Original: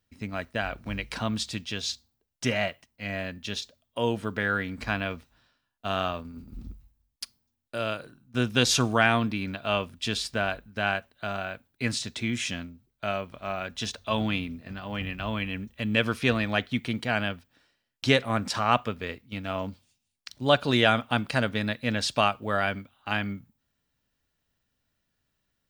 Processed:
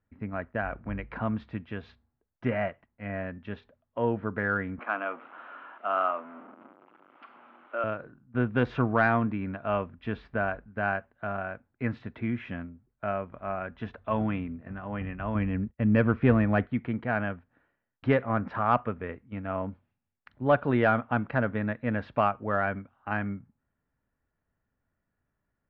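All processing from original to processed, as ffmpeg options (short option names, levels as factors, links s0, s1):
-filter_complex "[0:a]asettb=1/sr,asplit=3[s0][s1][s2];[s0]atrim=end=4.794[s3];[s1]atrim=start=4.79:end=7.84,asetpts=PTS-STARTPTS,afade=t=in:d=0.004:c=qsin,afade=t=out:st=3.046:d=0.004:c=qsin,aeval=exprs='val(0)+0.5*0.0158*sgn(val(0))':c=same,highpass=f=330:w=0.5412,highpass=f=330:w=1.3066,equalizer=f=430:t=q:w=4:g=-8,equalizer=f=1300:t=q:w=4:g=7,equalizer=f=1800:t=q:w=4:g=-7,equalizer=f=3000:t=q:w=4:g=5,lowpass=f=3400:w=0.5412,lowpass=f=3400:w=1.3066[s4];[s2]atrim=start=7.836[s5];[s3][s4]acrossfade=d=0.004:c1=hsin:c2=qsin[s6];[s6][s5]acrossfade=d=0.004:c1=qsin:c2=hsin,asettb=1/sr,asplit=3[s7][s8][s9];[s7]atrim=end=15.354[s10];[s8]atrim=start=15.35:end=16.67,asetpts=PTS-STARTPTS,afade=t=in:d=0.004:c=qsin,afade=t=out:st=1.316:d=0.004:c=qsin,agate=range=0.0224:threshold=0.00708:ratio=3:release=100:detection=peak,lowshelf=f=420:g=7.5[s11];[s9]atrim=start=16.666[s12];[s10][s11]acrossfade=d=0.004:c1=hsin:c2=qsin[s13];[s13][s12]acrossfade=d=0.004:c1=qsin:c2=hsin,lowpass=f=1800:w=0.5412,lowpass=f=1800:w=1.3066,acontrast=46,volume=0.501"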